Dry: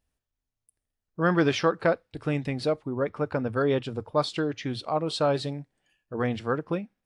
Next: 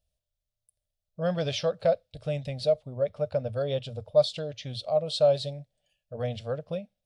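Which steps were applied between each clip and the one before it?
EQ curve 110 Hz 0 dB, 190 Hz -5 dB, 340 Hz -21 dB, 600 Hz +7 dB, 940 Hz -16 dB, 1900 Hz -13 dB, 3500 Hz +2 dB, 6700 Hz -2 dB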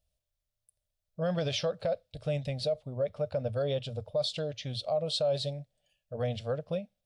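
limiter -21.5 dBFS, peak gain reduction 11 dB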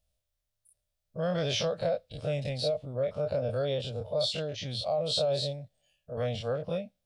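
spectral dilation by 60 ms; gain -2 dB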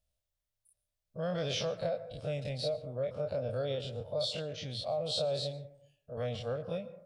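reverb RT60 0.70 s, pre-delay 0.113 s, DRR 14 dB; gain -4.5 dB

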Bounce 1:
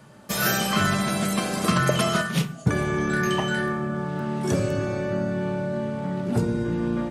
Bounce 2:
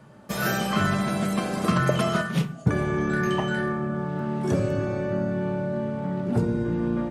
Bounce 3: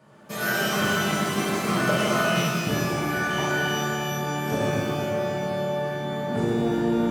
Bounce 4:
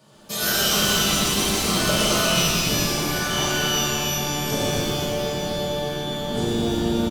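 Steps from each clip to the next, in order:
high shelf 2500 Hz -9 dB
HPF 190 Hz 6 dB/oct; shimmer reverb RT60 2.2 s, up +12 st, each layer -8 dB, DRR -7 dB; gain -5 dB
resonant high shelf 2700 Hz +9.5 dB, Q 1.5; frequency-shifting echo 0.119 s, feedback 62%, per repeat -140 Hz, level -8 dB

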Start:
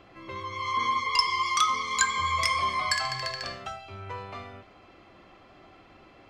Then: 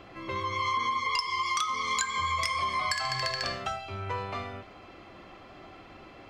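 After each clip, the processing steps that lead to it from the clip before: compressor 16:1, threshold -30 dBFS, peak gain reduction 14 dB; gain +4.5 dB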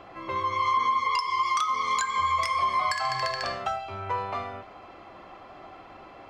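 bell 860 Hz +9.5 dB 1.7 oct; gain -3 dB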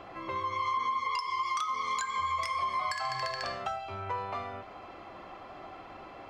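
compressor 1.5:1, threshold -40 dBFS, peak gain reduction 7 dB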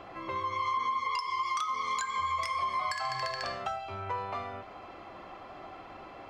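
nothing audible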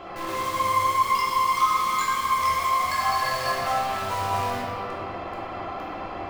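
in parallel at -3 dB: wrapped overs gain 36 dB; on the sum: reverb RT60 3.4 s, pre-delay 5 ms, DRR -7 dB

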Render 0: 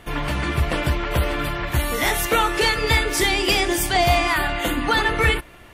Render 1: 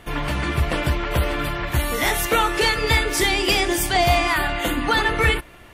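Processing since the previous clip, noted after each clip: nothing audible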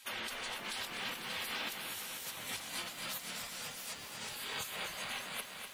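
spectral gate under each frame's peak -20 dB weak; negative-ratio compressor -40 dBFS, ratio -1; lo-fi delay 0.247 s, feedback 80%, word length 9-bit, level -7 dB; gain -4.5 dB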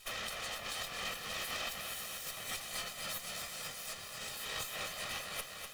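minimum comb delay 1.6 ms; gain +2 dB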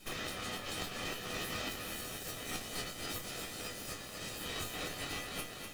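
resonator bank E2 fifth, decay 0.22 s; in parallel at -4 dB: sample-and-hold 39×; on the sum: gain +8 dB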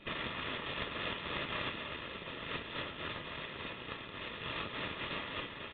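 full-wave rectifier; notch comb 760 Hz; downsampling 8000 Hz; gain +8.5 dB

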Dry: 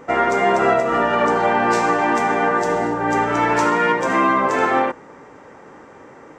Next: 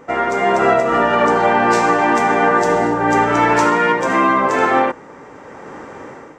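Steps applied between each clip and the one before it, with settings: AGC gain up to 10.5 dB; gain -1 dB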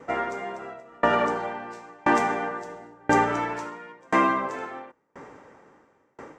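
dB-ramp tremolo decaying 0.97 Hz, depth 34 dB; gain -3 dB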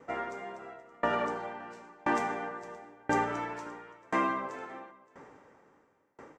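echo 0.571 s -22 dB; gain -8 dB

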